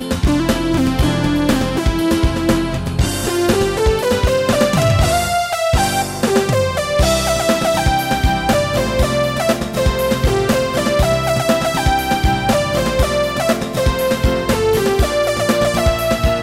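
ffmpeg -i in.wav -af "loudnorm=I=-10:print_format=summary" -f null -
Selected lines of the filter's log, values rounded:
Input Integrated:    -16.1 LUFS
Input True Peak:      -4.4 dBTP
Input LRA:             0.8 LU
Input Threshold:     -26.1 LUFS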